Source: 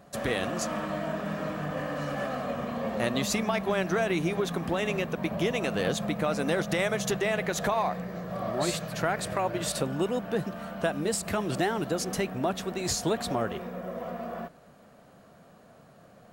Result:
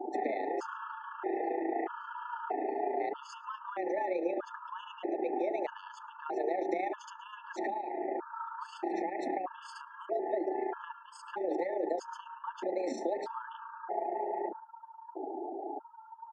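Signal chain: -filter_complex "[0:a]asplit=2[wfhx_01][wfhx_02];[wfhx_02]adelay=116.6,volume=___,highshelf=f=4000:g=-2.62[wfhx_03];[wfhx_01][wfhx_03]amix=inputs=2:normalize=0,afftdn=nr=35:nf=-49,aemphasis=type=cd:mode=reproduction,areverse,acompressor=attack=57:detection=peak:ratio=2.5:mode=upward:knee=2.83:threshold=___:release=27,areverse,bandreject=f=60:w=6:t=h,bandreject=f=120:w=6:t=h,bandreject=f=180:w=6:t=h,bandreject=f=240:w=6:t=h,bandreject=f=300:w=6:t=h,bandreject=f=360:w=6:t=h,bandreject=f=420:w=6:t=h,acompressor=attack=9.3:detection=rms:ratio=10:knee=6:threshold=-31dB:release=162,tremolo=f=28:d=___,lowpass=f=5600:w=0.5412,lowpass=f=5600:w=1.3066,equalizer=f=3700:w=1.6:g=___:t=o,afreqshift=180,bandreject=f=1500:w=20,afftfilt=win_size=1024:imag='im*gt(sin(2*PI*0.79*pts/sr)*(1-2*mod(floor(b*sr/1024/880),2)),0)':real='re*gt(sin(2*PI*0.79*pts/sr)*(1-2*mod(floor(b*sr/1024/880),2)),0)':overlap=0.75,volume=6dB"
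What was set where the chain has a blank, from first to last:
-21dB, -34dB, 0.519, -14.5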